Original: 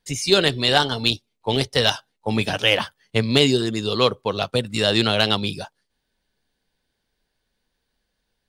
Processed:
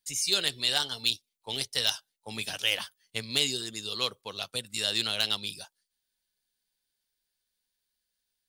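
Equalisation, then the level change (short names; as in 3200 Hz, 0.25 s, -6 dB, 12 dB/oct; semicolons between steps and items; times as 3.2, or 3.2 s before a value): pre-emphasis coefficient 0.9; 0.0 dB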